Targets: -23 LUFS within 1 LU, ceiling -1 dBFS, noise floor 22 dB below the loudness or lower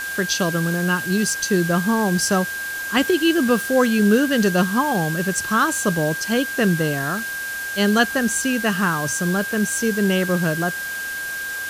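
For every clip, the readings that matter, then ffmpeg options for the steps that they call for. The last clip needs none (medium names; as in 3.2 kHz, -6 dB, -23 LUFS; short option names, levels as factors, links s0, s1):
steady tone 1.6 kHz; tone level -26 dBFS; noise floor -28 dBFS; noise floor target -42 dBFS; loudness -20.0 LUFS; peak level -3.5 dBFS; loudness target -23.0 LUFS
-> -af "bandreject=f=1600:w=30"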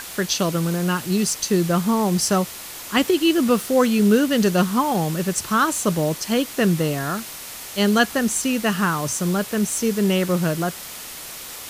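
steady tone not found; noise floor -36 dBFS; noise floor target -43 dBFS
-> -af "afftdn=nr=7:nf=-36"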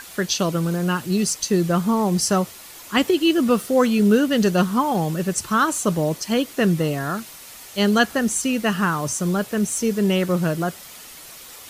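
noise floor -41 dBFS; noise floor target -43 dBFS
-> -af "afftdn=nr=6:nf=-41"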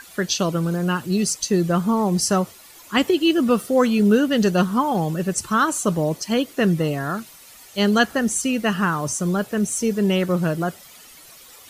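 noise floor -46 dBFS; loudness -21.0 LUFS; peak level -4.5 dBFS; loudness target -23.0 LUFS
-> -af "volume=0.794"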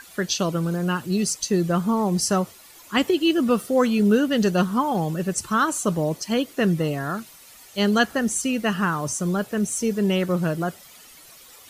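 loudness -23.0 LUFS; peak level -6.5 dBFS; noise floor -48 dBFS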